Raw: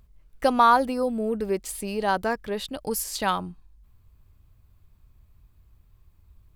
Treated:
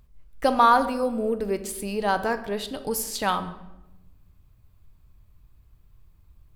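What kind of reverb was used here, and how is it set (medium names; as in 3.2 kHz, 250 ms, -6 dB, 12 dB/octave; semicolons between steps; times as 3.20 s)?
simulated room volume 420 m³, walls mixed, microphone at 0.44 m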